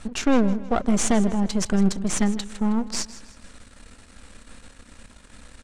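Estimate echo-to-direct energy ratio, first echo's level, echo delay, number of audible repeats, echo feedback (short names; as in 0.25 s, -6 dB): -15.5 dB, -16.0 dB, 0.159 s, 3, 40%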